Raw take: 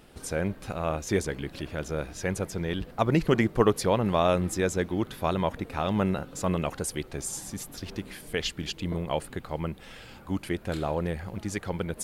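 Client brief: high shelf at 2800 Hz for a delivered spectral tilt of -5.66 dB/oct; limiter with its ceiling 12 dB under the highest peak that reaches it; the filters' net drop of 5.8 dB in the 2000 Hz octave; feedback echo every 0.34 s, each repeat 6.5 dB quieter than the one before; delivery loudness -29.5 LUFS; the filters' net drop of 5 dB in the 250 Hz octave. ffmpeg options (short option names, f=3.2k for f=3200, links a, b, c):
-af "equalizer=f=250:t=o:g=-7.5,equalizer=f=2k:t=o:g=-4.5,highshelf=f=2.8k:g=-7,alimiter=limit=-22.5dB:level=0:latency=1,aecho=1:1:340|680|1020|1360|1700|2040:0.473|0.222|0.105|0.0491|0.0231|0.0109,volume=5dB"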